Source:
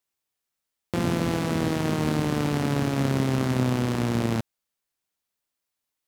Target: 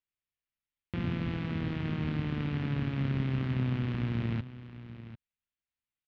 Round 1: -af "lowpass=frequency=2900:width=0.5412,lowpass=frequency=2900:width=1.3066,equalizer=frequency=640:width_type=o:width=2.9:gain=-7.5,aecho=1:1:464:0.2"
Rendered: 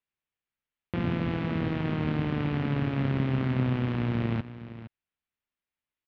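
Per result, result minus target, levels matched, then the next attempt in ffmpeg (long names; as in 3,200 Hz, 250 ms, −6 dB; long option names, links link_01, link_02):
echo 281 ms early; 500 Hz band +4.0 dB
-af "lowpass=frequency=2900:width=0.5412,lowpass=frequency=2900:width=1.3066,equalizer=frequency=640:width_type=o:width=2.9:gain=-7.5,aecho=1:1:745:0.2"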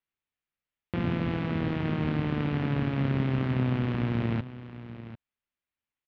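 500 Hz band +4.0 dB
-af "lowpass=frequency=2900:width=0.5412,lowpass=frequency=2900:width=1.3066,equalizer=frequency=640:width_type=o:width=2.9:gain=-17,aecho=1:1:745:0.2"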